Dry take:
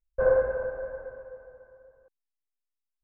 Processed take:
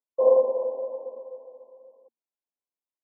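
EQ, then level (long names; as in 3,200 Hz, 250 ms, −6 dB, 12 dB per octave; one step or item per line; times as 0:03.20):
Chebyshev high-pass filter 230 Hz, order 10
linear-phase brick-wall low-pass 1,100 Hz
+4.0 dB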